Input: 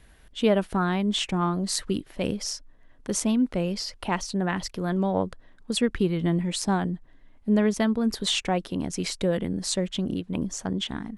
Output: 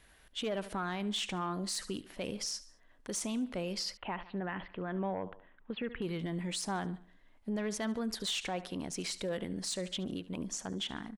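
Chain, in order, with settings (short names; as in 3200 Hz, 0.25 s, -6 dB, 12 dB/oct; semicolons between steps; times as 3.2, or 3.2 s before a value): low shelf 390 Hz -9.5 dB; feedback echo 72 ms, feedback 46%, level -20 dB; soft clip -19.5 dBFS, distortion -19 dB; limiter -26.5 dBFS, peak gain reduction 6.5 dB; 3.97–6.02 steep low-pass 3100 Hz 48 dB/oct; gain -2 dB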